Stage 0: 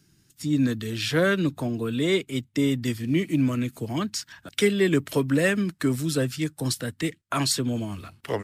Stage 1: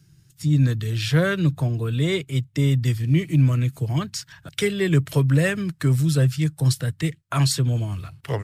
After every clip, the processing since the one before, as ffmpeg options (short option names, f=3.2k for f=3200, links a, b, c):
-af "lowshelf=f=180:t=q:w=3:g=6.5"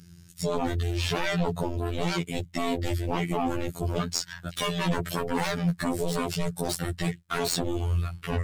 -af "aeval=exprs='0.422*sin(PI/2*5.62*val(0)/0.422)':c=same,afftfilt=real='hypot(re,im)*cos(PI*b)':imag='0':win_size=2048:overlap=0.75,aeval=exprs='(tanh(0.708*val(0)+0.65)-tanh(0.65))/0.708':c=same,volume=-7dB"